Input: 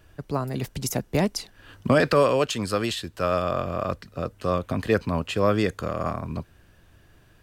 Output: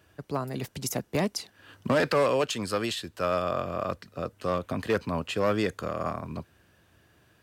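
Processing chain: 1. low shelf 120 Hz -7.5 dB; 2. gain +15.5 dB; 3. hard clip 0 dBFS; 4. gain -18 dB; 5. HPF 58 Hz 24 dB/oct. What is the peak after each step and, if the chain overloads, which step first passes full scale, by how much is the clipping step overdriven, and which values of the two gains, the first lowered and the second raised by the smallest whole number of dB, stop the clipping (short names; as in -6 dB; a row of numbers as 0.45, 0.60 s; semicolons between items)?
-9.0, +6.5, 0.0, -18.0, -14.0 dBFS; step 2, 6.5 dB; step 2 +8.5 dB, step 4 -11 dB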